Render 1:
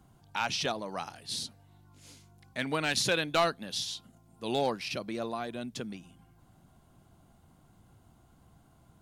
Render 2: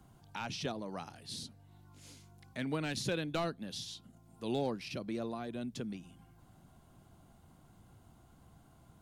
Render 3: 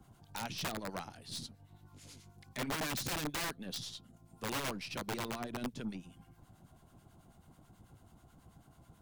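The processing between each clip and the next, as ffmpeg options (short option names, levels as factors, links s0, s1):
-filter_complex "[0:a]acrossover=split=410[s0][s1];[s1]acompressor=threshold=0.00141:ratio=1.5[s2];[s0][s2]amix=inputs=2:normalize=0"
-filter_complex "[0:a]acrossover=split=1000[s0][s1];[s0]aeval=exprs='val(0)*(1-0.7/2+0.7/2*cos(2*PI*9.2*n/s))':c=same[s2];[s1]aeval=exprs='val(0)*(1-0.7/2-0.7/2*cos(2*PI*9.2*n/s))':c=same[s3];[s2][s3]amix=inputs=2:normalize=0,aeval=exprs='(mod(53.1*val(0)+1,2)-1)/53.1':c=same,aeval=exprs='0.0188*(cos(1*acos(clip(val(0)/0.0188,-1,1)))-cos(1*PI/2))+0.00106*(cos(6*acos(clip(val(0)/0.0188,-1,1)))-cos(6*PI/2))':c=same,volume=1.5"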